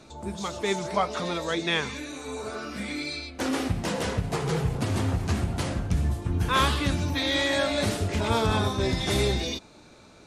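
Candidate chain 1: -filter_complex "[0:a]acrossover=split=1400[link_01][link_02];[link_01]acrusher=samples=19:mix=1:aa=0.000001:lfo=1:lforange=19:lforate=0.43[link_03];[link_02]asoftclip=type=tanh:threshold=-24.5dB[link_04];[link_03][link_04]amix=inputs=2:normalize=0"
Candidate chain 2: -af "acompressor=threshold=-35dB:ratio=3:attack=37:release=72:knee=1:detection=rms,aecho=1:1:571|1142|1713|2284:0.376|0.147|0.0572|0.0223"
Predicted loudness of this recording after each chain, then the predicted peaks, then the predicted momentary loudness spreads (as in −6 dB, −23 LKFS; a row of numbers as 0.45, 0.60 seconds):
−28.0, −33.5 LKFS; −10.5, −18.5 dBFS; 10, 3 LU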